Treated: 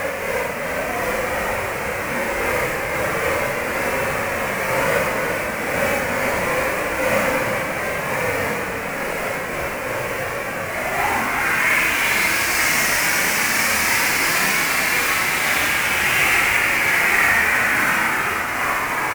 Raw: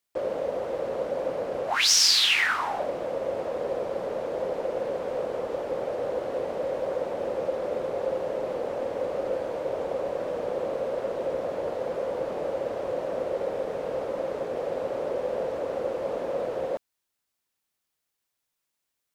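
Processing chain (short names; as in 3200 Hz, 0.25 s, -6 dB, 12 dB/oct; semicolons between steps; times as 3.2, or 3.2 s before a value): spectral whitening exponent 0.3; AGC gain up to 9.5 dB; Paulstretch 8.7×, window 0.05 s, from 0.45; resonant high shelf 2800 Hz -8 dB, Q 3; outdoor echo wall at 59 m, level -7 dB; gain -1 dB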